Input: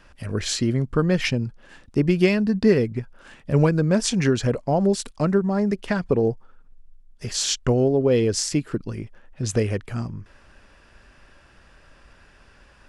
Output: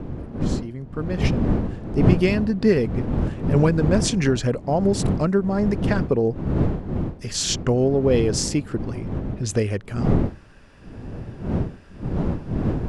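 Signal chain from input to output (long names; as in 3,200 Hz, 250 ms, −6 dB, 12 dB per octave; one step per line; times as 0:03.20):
fade in at the beginning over 2.81 s
wind on the microphone 220 Hz −25 dBFS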